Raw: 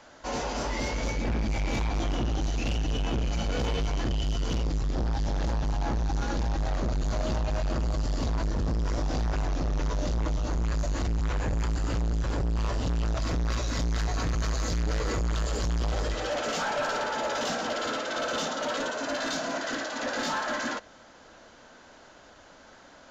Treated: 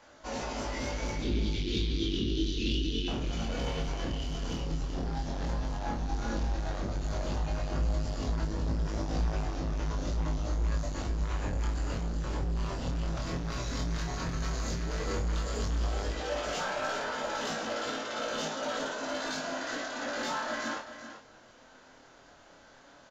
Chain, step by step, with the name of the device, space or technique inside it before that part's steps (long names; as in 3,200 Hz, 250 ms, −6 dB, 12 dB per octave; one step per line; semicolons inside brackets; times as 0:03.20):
0:01.22–0:03.08: drawn EQ curve 150 Hz 0 dB, 250 Hz +5 dB, 390 Hz +9 dB, 700 Hz −28 dB, 2,300 Hz −3 dB, 3,500 Hz +14 dB, 7,500 Hz −6 dB
double-tracked vocal (double-tracking delay 31 ms −7 dB; chorus effect 0.11 Hz, delay 18.5 ms, depth 5.4 ms)
single-tap delay 387 ms −11 dB
level −2 dB